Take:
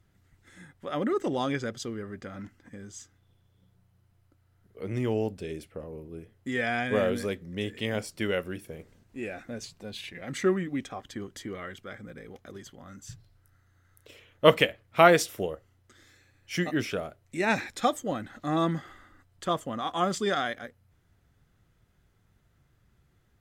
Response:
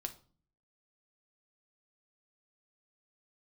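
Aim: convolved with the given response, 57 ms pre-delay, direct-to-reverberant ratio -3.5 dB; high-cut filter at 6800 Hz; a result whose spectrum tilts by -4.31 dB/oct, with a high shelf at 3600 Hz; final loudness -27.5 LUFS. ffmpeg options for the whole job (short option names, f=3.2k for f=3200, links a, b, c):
-filter_complex "[0:a]lowpass=6.8k,highshelf=f=3.6k:g=-3,asplit=2[a][b];[1:a]atrim=start_sample=2205,adelay=57[c];[b][c]afir=irnorm=-1:irlink=0,volume=5dB[d];[a][d]amix=inputs=2:normalize=0,volume=-3.5dB"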